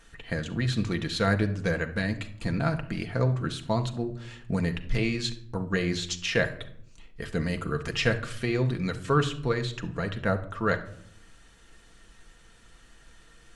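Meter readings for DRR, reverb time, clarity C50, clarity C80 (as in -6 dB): 4.0 dB, 0.70 s, 13.0 dB, 17.0 dB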